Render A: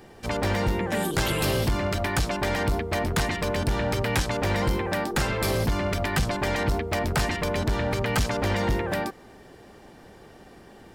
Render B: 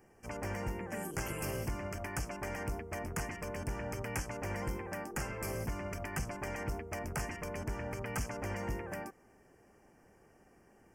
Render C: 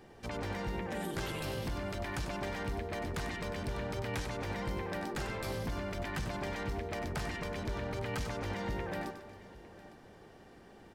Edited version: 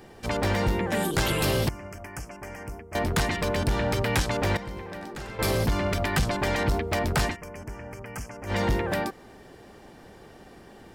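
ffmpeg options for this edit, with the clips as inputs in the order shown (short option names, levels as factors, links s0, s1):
-filter_complex "[1:a]asplit=2[s0][s1];[0:a]asplit=4[s2][s3][s4][s5];[s2]atrim=end=1.692[s6];[s0]atrim=start=1.688:end=2.952[s7];[s3]atrim=start=2.948:end=4.572[s8];[2:a]atrim=start=4.568:end=5.392[s9];[s4]atrim=start=5.388:end=7.37[s10];[s1]atrim=start=7.27:end=8.56[s11];[s5]atrim=start=8.46[s12];[s6][s7]acrossfade=d=0.004:c1=hsin:c2=hsin[s13];[s13][s8]acrossfade=d=0.004:c1=hsin:c2=hsin[s14];[s14][s9]acrossfade=d=0.004:c1=hsin:c2=hsin[s15];[s15][s10]acrossfade=d=0.004:c1=hsin:c2=hsin[s16];[s16][s11]acrossfade=d=0.1:c1=tri:c2=tri[s17];[s17][s12]acrossfade=d=0.1:c1=tri:c2=tri"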